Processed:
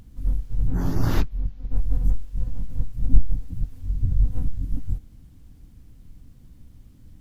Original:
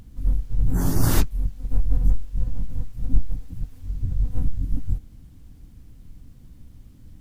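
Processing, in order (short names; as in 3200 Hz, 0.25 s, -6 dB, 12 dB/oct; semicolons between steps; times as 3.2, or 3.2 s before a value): 0.67–1.77 running mean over 5 samples; 2.79–4.33 low shelf 330 Hz +5.5 dB; gain -2 dB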